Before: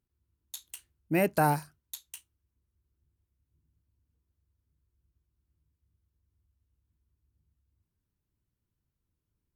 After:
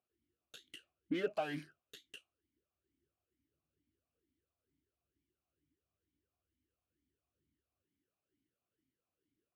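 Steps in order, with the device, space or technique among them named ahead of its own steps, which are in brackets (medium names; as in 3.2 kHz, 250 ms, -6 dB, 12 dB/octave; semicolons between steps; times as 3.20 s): talk box (valve stage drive 38 dB, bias 0.55; talking filter a-i 2.2 Hz); trim +15 dB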